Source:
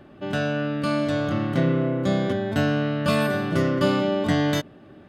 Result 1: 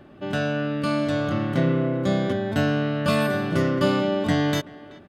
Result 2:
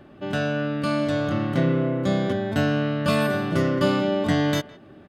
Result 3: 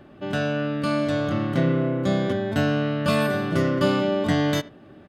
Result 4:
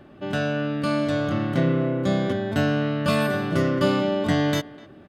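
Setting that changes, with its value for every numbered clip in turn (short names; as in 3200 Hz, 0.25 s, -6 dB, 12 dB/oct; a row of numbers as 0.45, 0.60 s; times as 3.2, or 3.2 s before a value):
speakerphone echo, time: 380, 160, 80, 250 ms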